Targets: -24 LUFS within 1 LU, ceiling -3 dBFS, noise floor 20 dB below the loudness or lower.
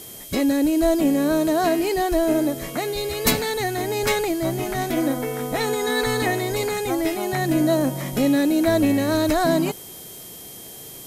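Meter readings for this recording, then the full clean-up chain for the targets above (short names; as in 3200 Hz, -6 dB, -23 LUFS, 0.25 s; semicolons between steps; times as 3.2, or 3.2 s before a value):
steady tone 3200 Hz; tone level -48 dBFS; noise floor -39 dBFS; noise floor target -42 dBFS; loudness -21.5 LUFS; peak -4.5 dBFS; loudness target -24.0 LUFS
-> notch 3200 Hz, Q 30; denoiser 6 dB, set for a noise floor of -39 dBFS; gain -2.5 dB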